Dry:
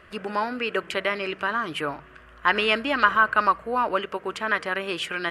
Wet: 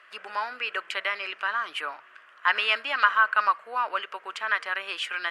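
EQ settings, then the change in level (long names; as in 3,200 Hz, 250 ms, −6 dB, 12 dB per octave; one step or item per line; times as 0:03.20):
high-pass filter 1,000 Hz 12 dB per octave
high-shelf EQ 10,000 Hz −11.5 dB
0.0 dB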